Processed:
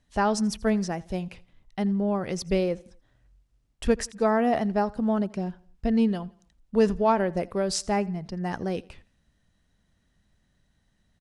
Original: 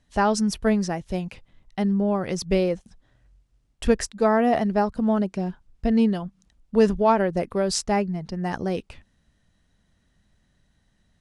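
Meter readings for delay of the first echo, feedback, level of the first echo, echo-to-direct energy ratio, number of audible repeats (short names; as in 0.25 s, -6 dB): 84 ms, 41%, -23.0 dB, -22.0 dB, 2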